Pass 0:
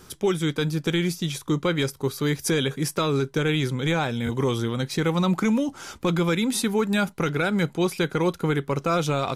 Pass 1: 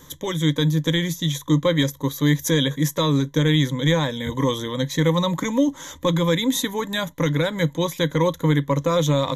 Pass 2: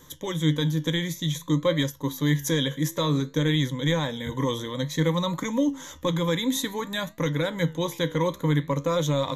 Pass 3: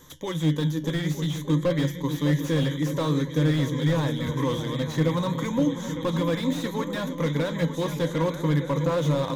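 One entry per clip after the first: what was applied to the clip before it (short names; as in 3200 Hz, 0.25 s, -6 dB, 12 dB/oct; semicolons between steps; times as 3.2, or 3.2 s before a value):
ripple EQ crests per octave 1.1, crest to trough 15 dB
flange 0.55 Hz, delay 8 ms, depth 9.1 ms, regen +79%
repeats that get brighter 0.303 s, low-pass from 200 Hz, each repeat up 2 oct, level -6 dB; slew limiter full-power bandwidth 62 Hz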